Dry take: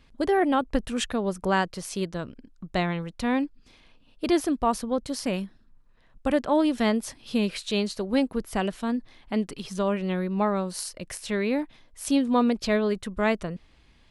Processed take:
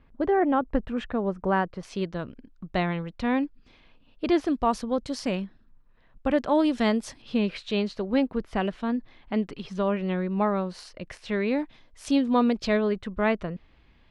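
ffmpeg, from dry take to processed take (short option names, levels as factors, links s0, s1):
-af "asetnsamples=n=441:p=0,asendcmd='1.83 lowpass f 3600;4.47 lowpass f 6200;5.35 lowpass f 3400;6.38 lowpass f 6800;7.22 lowpass f 3300;11.48 lowpass f 5500;12.77 lowpass f 3100',lowpass=1700"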